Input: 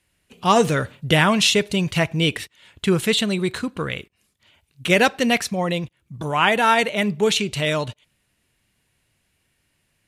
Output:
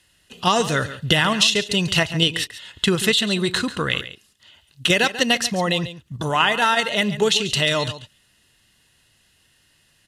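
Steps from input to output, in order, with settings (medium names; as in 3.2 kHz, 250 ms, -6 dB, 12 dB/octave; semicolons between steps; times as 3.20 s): Butterworth band-stop 2.3 kHz, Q 6.6; in parallel at +0.5 dB: level held to a coarse grid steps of 18 dB; on the sum: peaking EQ 4 kHz +8.5 dB 2.7 oct; compression 6:1, threshold -14 dBFS, peak gain reduction 12.5 dB; delay 140 ms -13.5 dB; trim -1 dB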